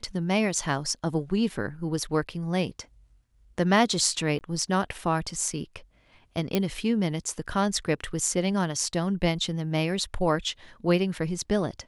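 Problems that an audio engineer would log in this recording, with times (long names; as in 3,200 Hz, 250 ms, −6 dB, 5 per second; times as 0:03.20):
0:04.39–0:04.41: drop-out 19 ms
0:06.55: click −10 dBFS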